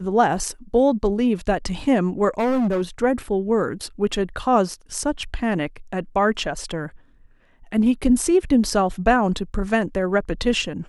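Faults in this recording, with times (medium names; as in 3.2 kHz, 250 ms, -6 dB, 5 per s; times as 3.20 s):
2.39–2.82 s: clipped -17.5 dBFS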